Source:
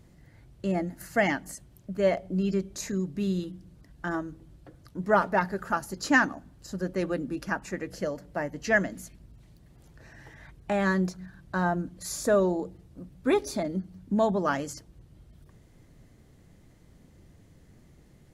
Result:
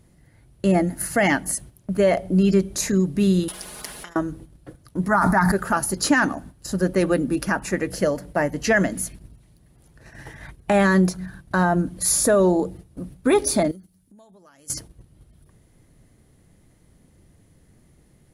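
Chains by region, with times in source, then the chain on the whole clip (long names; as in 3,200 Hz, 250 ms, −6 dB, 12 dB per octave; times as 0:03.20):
0:03.48–0:04.16: compressor whose output falls as the input rises −39 dBFS, ratio −0.5 + comb filter 4.8 ms, depth 83% + every bin compressed towards the loudest bin 10 to 1
0:05.08–0:05.52: phaser with its sweep stopped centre 1,200 Hz, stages 4 + level that may fall only so fast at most 44 dB per second
0:13.71–0:14.70: first-order pre-emphasis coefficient 0.8 + downward compressor 12 to 1, threshold −48 dBFS
whole clip: parametric band 10,000 Hz +14.5 dB 0.23 octaves; noise gate −49 dBFS, range −10 dB; boost into a limiter +18 dB; level −8 dB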